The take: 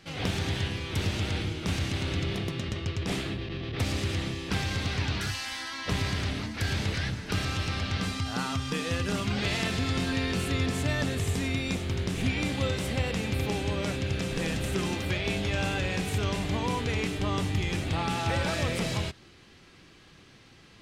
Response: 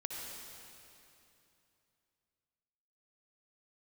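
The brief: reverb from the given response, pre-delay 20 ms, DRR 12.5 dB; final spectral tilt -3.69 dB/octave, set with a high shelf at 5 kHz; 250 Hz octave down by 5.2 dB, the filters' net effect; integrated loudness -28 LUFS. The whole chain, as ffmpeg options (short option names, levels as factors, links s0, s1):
-filter_complex "[0:a]equalizer=f=250:t=o:g=-7.5,highshelf=f=5000:g=7,asplit=2[s0][s1];[1:a]atrim=start_sample=2205,adelay=20[s2];[s1][s2]afir=irnorm=-1:irlink=0,volume=0.224[s3];[s0][s3]amix=inputs=2:normalize=0,volume=1.26"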